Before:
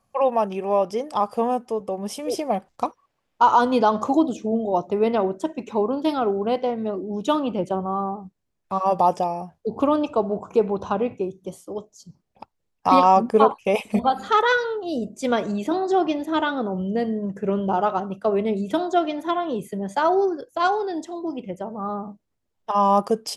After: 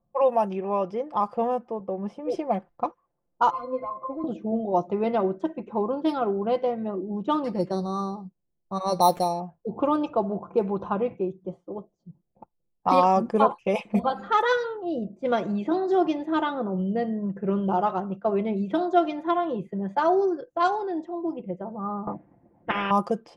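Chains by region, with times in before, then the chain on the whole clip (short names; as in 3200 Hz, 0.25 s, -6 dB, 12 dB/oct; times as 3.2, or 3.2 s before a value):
3.5–4.24 BPF 460–7000 Hz + sample leveller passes 2 + octave resonator C, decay 0.16 s
7.44–9.4 low-pass opened by the level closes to 1100 Hz, open at -16.5 dBFS + sample-rate reducer 4900 Hz
22.07–22.91 speaker cabinet 100–2400 Hz, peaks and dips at 280 Hz +7 dB, 420 Hz -8 dB, 760 Hz +5 dB, 1300 Hz -6 dB, 2000 Hz +5 dB + spectral compressor 10:1
whole clip: comb 5.8 ms, depth 48%; dynamic EQ 3500 Hz, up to -4 dB, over -39 dBFS, Q 0.78; low-pass opened by the level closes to 560 Hz, open at -14.5 dBFS; gain -3 dB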